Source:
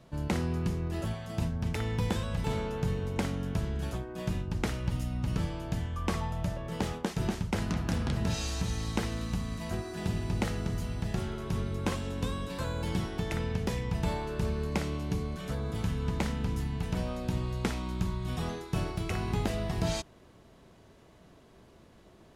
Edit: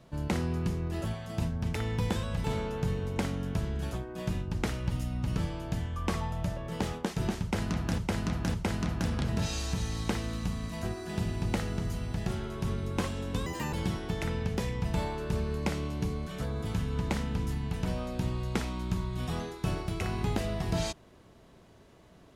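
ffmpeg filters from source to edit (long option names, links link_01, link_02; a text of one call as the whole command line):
ffmpeg -i in.wav -filter_complex "[0:a]asplit=5[link_01][link_02][link_03][link_04][link_05];[link_01]atrim=end=7.982[link_06];[link_02]atrim=start=7.418:end=7.982[link_07];[link_03]atrim=start=7.418:end=12.344[link_08];[link_04]atrim=start=12.34:end=12.82,asetpts=PTS-STARTPTS,asetrate=79380,aresample=44100[link_09];[link_05]atrim=start=12.816[link_10];[link_06][link_07]acrossfade=duration=0.004:curve1=hsin:curve2=hsin[link_11];[link_11][link_08]acrossfade=duration=0.004:curve1=hsin:curve2=hsin[link_12];[link_12][link_09]acrossfade=duration=0.004:curve1=hsin:curve2=hsin[link_13];[link_13][link_10]acrossfade=duration=0.004:curve1=hsin:curve2=hsin" out.wav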